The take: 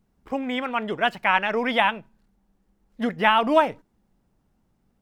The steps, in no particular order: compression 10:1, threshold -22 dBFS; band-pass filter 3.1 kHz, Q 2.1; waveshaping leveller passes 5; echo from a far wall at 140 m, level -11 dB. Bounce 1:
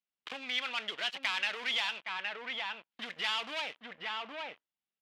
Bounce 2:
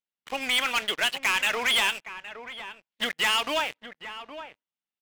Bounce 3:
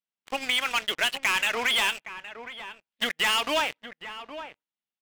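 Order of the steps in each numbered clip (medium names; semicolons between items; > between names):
waveshaping leveller > echo from a far wall > compression > band-pass filter; compression > band-pass filter > waveshaping leveller > echo from a far wall; band-pass filter > waveshaping leveller > compression > echo from a far wall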